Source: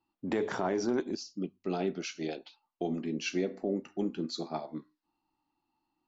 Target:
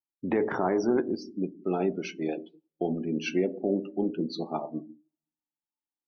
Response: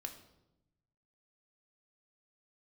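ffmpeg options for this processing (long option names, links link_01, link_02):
-filter_complex "[0:a]asplit=2[link_01][link_02];[1:a]atrim=start_sample=2205,lowpass=3700[link_03];[link_02][link_03]afir=irnorm=-1:irlink=0,volume=1dB[link_04];[link_01][link_04]amix=inputs=2:normalize=0,afftdn=noise_reduction=30:noise_floor=-40"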